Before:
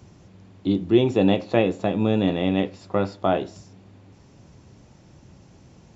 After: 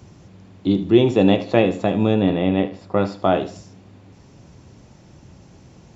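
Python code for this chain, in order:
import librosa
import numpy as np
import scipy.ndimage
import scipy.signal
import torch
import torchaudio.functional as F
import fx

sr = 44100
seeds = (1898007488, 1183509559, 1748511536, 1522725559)

y = fx.high_shelf(x, sr, hz=fx.line((2.13, 4900.0), (2.96, 3300.0)), db=-11.5, at=(2.13, 2.96), fade=0.02)
y = fx.echo_feedback(y, sr, ms=76, feedback_pct=29, wet_db=-14.5)
y = y * 10.0 ** (3.5 / 20.0)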